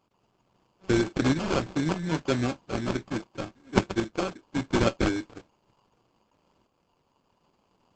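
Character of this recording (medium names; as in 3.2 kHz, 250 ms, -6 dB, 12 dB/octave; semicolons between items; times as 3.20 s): a buzz of ramps at a fixed pitch in blocks of 8 samples; tremolo saw up 0.75 Hz, depth 45%; aliases and images of a low sample rate 1.9 kHz, jitter 0%; Opus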